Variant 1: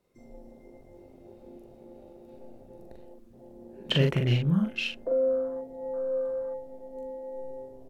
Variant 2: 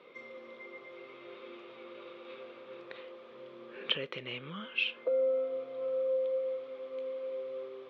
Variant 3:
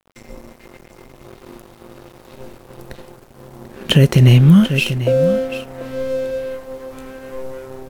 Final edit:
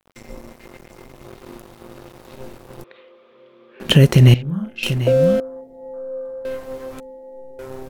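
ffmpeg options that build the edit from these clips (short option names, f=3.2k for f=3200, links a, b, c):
-filter_complex "[0:a]asplit=3[a][b][c];[2:a]asplit=5[d][e][f][g][h];[d]atrim=end=2.842[i];[1:a]atrim=start=2.838:end=3.802[j];[e]atrim=start=3.798:end=4.342[k];[a]atrim=start=4.338:end=4.832[l];[f]atrim=start=4.828:end=5.402[m];[b]atrim=start=5.398:end=6.452[n];[g]atrim=start=6.448:end=7.002[o];[c]atrim=start=6.998:end=7.592[p];[h]atrim=start=7.588[q];[i][j]acrossfade=d=0.004:c1=hsin:c2=hsin[r];[r][k]acrossfade=d=0.004:c1=hsin:c2=hsin[s];[s][l]acrossfade=d=0.004:c1=hsin:c2=hsin[t];[t][m]acrossfade=d=0.004:c1=hsin:c2=hsin[u];[u][n]acrossfade=d=0.004:c1=hsin:c2=hsin[v];[v][o]acrossfade=d=0.004:c1=hsin:c2=hsin[w];[w][p]acrossfade=d=0.004:c1=hsin:c2=hsin[x];[x][q]acrossfade=d=0.004:c1=hsin:c2=hsin"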